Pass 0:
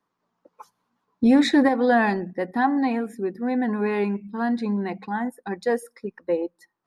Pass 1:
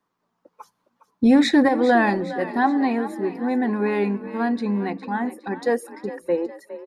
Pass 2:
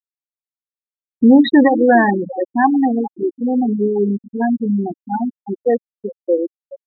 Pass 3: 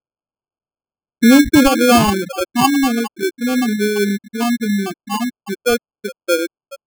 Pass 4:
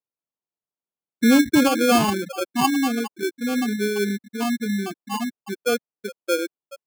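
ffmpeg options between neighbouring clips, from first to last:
-filter_complex "[0:a]asplit=6[a][b][c][d][e][f];[b]adelay=410,afreqshift=37,volume=-14dB[g];[c]adelay=820,afreqshift=74,volume=-20dB[h];[d]adelay=1230,afreqshift=111,volume=-26dB[i];[e]adelay=1640,afreqshift=148,volume=-32.1dB[j];[f]adelay=2050,afreqshift=185,volume=-38.1dB[k];[a][g][h][i][j][k]amix=inputs=6:normalize=0,volume=1.5dB"
-af "afftfilt=real='re*gte(hypot(re,im),0.282)':imag='im*gte(hypot(re,im),0.282)':win_size=1024:overlap=0.75,volume=6dB"
-af "acrusher=samples=23:mix=1:aa=0.000001"
-af "highpass=130,volume=-6dB"

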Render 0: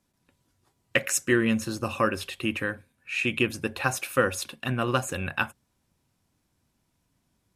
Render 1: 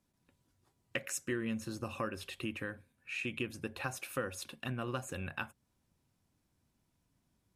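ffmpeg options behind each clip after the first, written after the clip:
-af "lowshelf=f=480:g=3,acompressor=threshold=-33dB:ratio=2,volume=-6.5dB"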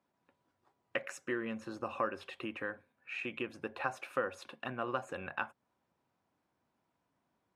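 -af "bandpass=f=870:t=q:w=0.84:csg=0,volume=6dB"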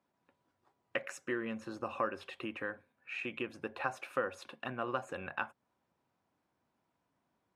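-af anull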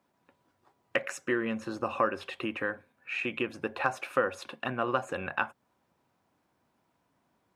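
-af "asoftclip=type=hard:threshold=-18.5dB,volume=7dB"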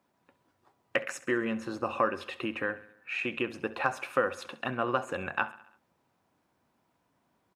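-af "aecho=1:1:67|134|201|268|335:0.126|0.0718|0.0409|0.0233|0.0133"

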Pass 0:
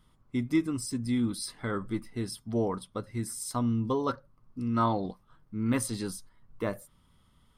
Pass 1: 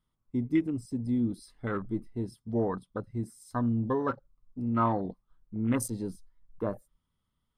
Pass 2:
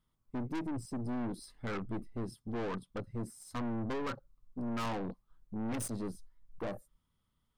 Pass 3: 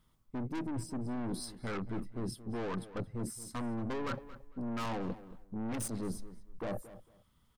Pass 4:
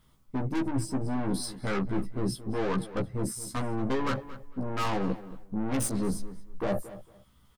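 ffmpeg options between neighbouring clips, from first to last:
-af "afwtdn=0.0112"
-af "aeval=exprs='(tanh(70.8*val(0)+0.45)-tanh(0.45))/70.8':c=same,volume=2.5dB"
-filter_complex "[0:a]areverse,acompressor=threshold=-44dB:ratio=6,areverse,asplit=2[a][b];[b]adelay=226,lowpass=f=3.4k:p=1,volume=-15dB,asplit=2[c][d];[d]adelay=226,lowpass=f=3.4k:p=1,volume=0.22[e];[a][c][e]amix=inputs=3:normalize=0,volume=9dB"
-filter_complex "[0:a]asplit=2[a][b];[b]adelay=15,volume=-3dB[c];[a][c]amix=inputs=2:normalize=0,volume=6dB"

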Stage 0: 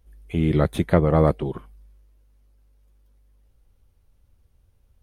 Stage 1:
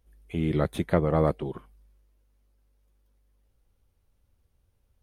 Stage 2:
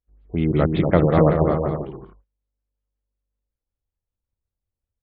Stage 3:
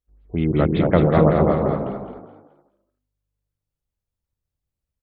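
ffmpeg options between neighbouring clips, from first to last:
-af "lowshelf=f=120:g=-5,volume=-4.5dB"
-af "aecho=1:1:240|384|470.4|522.2|553.3:0.631|0.398|0.251|0.158|0.1,agate=range=-25dB:threshold=-56dB:ratio=16:detection=peak,afftfilt=real='re*lt(b*sr/1024,990*pow(5000/990,0.5+0.5*sin(2*PI*5.4*pts/sr)))':imag='im*lt(b*sr/1024,990*pow(5000/990,0.5+0.5*sin(2*PI*5.4*pts/sr)))':win_size=1024:overlap=0.75,volume=6dB"
-filter_complex "[0:a]asplit=5[a][b][c][d][e];[b]adelay=213,afreqshift=50,volume=-7dB[f];[c]adelay=426,afreqshift=100,volume=-16.6dB[g];[d]adelay=639,afreqshift=150,volume=-26.3dB[h];[e]adelay=852,afreqshift=200,volume=-35.9dB[i];[a][f][g][h][i]amix=inputs=5:normalize=0"

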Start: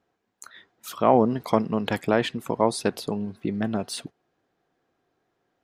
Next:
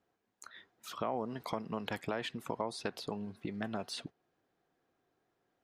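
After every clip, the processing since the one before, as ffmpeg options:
-filter_complex "[0:a]alimiter=limit=-11dB:level=0:latency=1:release=264,acrossover=split=620|6400[a][b][c];[a]acompressor=threshold=-33dB:ratio=4[d];[b]acompressor=threshold=-30dB:ratio=4[e];[c]acompressor=threshold=-53dB:ratio=4[f];[d][e][f]amix=inputs=3:normalize=0,volume=-5.5dB"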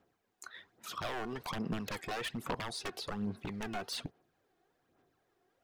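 -af "aeval=exprs='0.0178*(abs(mod(val(0)/0.0178+3,4)-2)-1)':c=same,aphaser=in_gain=1:out_gain=1:delay=2.8:decay=0.5:speed=1.2:type=sinusoidal,volume=2dB"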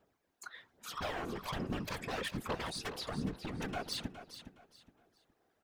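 -filter_complex "[0:a]afftfilt=real='hypot(re,im)*cos(2*PI*random(0))':imag='hypot(re,im)*sin(2*PI*random(1))':win_size=512:overlap=0.75,asplit=2[a][b];[b]aecho=0:1:415|830|1245:0.266|0.0718|0.0194[c];[a][c]amix=inputs=2:normalize=0,volume=5.5dB"

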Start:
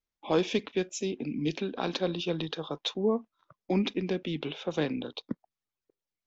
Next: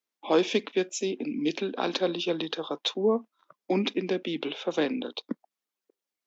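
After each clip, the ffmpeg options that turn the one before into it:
-af "highpass=f=220:w=0.5412,highpass=f=220:w=1.3066,volume=3.5dB"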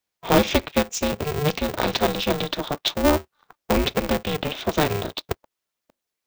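-af "aeval=exprs='val(0)*sgn(sin(2*PI*150*n/s))':c=same,volume=5.5dB"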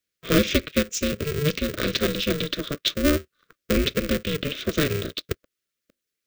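-af "asuperstop=centerf=840:order=4:qfactor=1.1"

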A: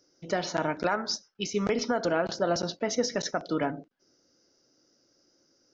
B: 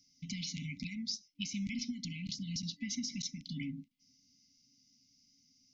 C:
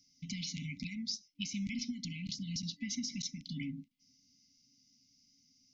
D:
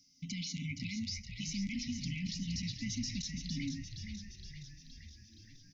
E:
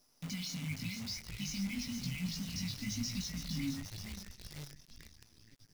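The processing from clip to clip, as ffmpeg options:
-af "afftfilt=real='re*(1-between(b*sr/4096,280,2000))':imag='im*(1-between(b*sr/4096,280,2000))':win_size=4096:overlap=0.75,acompressor=threshold=-38dB:ratio=2.5"
-af anull
-filter_complex "[0:a]alimiter=level_in=9dB:limit=-24dB:level=0:latency=1:release=22,volume=-9dB,asplit=2[a][b];[b]asplit=8[c][d][e][f][g][h][i][j];[c]adelay=469,afreqshift=-66,volume=-7dB[k];[d]adelay=938,afreqshift=-132,volume=-11.2dB[l];[e]adelay=1407,afreqshift=-198,volume=-15.3dB[m];[f]adelay=1876,afreqshift=-264,volume=-19.5dB[n];[g]adelay=2345,afreqshift=-330,volume=-23.6dB[o];[h]adelay=2814,afreqshift=-396,volume=-27.8dB[p];[i]adelay=3283,afreqshift=-462,volume=-31.9dB[q];[j]adelay=3752,afreqshift=-528,volume=-36.1dB[r];[k][l][m][n][o][p][q][r]amix=inputs=8:normalize=0[s];[a][s]amix=inputs=2:normalize=0,volume=2dB"
-af "flanger=delay=16:depth=5.5:speed=0.94,acrusher=bits=9:dc=4:mix=0:aa=0.000001,volume=2.5dB"

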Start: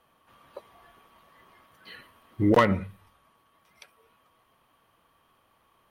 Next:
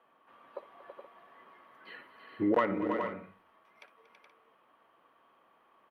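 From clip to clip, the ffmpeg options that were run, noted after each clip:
-filter_complex "[0:a]acrossover=split=220 2700:gain=0.0891 1 0.141[a][b][c];[a][b][c]amix=inputs=3:normalize=0,acompressor=threshold=-28dB:ratio=2,aecho=1:1:59|234|328|422|475:0.133|0.168|0.398|0.398|0.178"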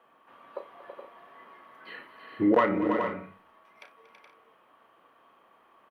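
-filter_complex "[0:a]asplit=2[a][b];[b]adelay=33,volume=-9dB[c];[a][c]amix=inputs=2:normalize=0,volume=4.5dB"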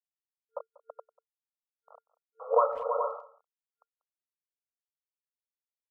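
-filter_complex "[0:a]acrusher=bits=5:mix=0:aa=0.000001,afftfilt=real='re*between(b*sr/4096,450,1400)':imag='im*between(b*sr/4096,450,1400)':win_size=4096:overlap=0.75,asplit=2[a][b];[b]adelay=190,highpass=300,lowpass=3.4k,asoftclip=type=hard:threshold=-21dB,volume=-21dB[c];[a][c]amix=inputs=2:normalize=0"

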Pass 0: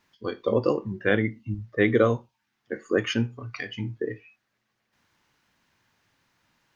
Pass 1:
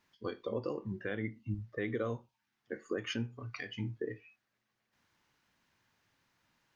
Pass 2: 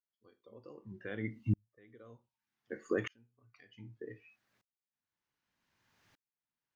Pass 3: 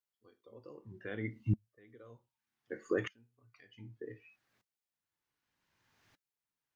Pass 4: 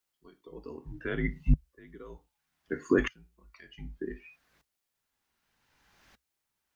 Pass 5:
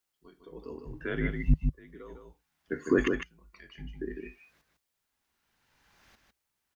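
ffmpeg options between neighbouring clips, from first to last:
-af "alimiter=limit=-19.5dB:level=0:latency=1:release=236,volume=-6dB"
-af "aeval=exprs='val(0)*pow(10,-40*if(lt(mod(-0.65*n/s,1),2*abs(-0.65)/1000),1-mod(-0.65*n/s,1)/(2*abs(-0.65)/1000),(mod(-0.65*n/s,1)-2*abs(-0.65)/1000)/(1-2*abs(-0.65)/1000))/20)':c=same,volume=7dB"
-af "flanger=delay=1.9:depth=1:regen=-77:speed=1.4:shape=triangular,volume=4.5dB"
-af "afreqshift=-65,volume=8.5dB"
-af "aecho=1:1:154:0.531"

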